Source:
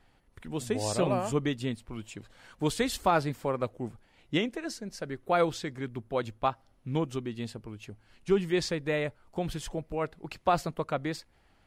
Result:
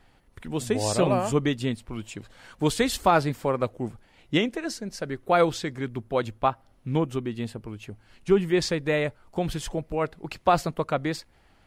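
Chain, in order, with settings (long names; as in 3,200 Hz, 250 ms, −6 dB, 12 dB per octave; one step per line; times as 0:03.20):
0:06.26–0:08.62: dynamic equaliser 5,300 Hz, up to −7 dB, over −55 dBFS, Q 0.93
level +5 dB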